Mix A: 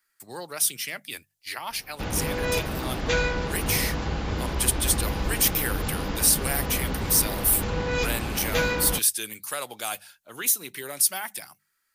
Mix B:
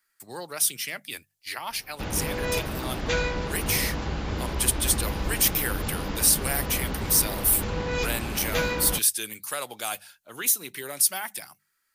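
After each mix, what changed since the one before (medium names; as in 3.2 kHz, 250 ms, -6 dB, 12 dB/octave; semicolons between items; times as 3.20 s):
reverb: off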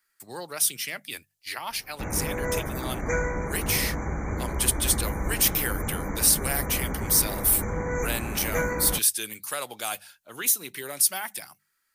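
background: add brick-wall FIR band-stop 2.4–5.8 kHz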